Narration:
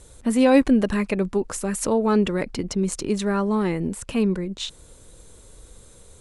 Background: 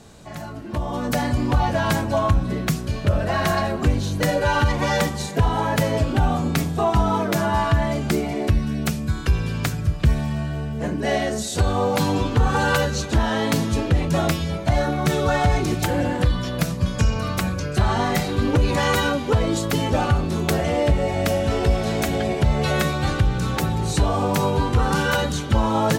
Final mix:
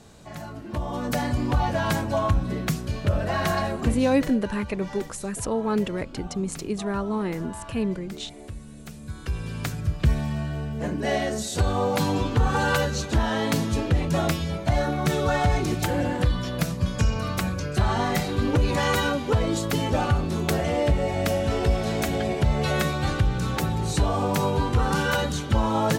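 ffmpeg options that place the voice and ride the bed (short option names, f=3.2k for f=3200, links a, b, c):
-filter_complex "[0:a]adelay=3600,volume=-5dB[a];[1:a]volume=12.5dB,afade=t=out:st=3.68:d=0.7:silence=0.16788,afade=t=in:st=8.85:d=1.21:silence=0.158489[b];[a][b]amix=inputs=2:normalize=0"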